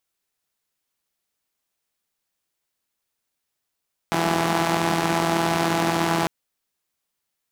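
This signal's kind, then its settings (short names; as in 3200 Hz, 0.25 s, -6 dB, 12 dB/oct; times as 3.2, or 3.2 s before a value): four-cylinder engine model, steady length 2.15 s, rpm 5000, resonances 200/340/730 Hz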